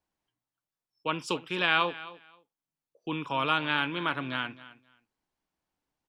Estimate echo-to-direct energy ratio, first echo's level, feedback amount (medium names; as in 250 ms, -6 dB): -17.5 dB, -17.5 dB, 18%